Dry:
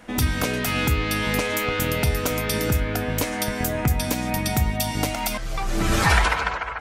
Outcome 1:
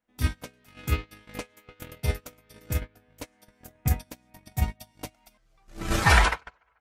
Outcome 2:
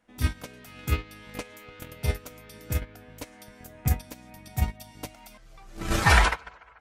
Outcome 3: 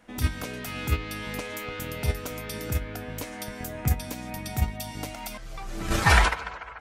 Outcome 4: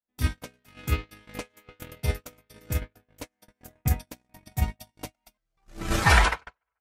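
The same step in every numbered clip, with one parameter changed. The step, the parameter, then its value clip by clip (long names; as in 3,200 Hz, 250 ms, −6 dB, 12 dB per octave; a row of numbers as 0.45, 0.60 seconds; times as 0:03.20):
noise gate, range: −37, −23, −11, −54 decibels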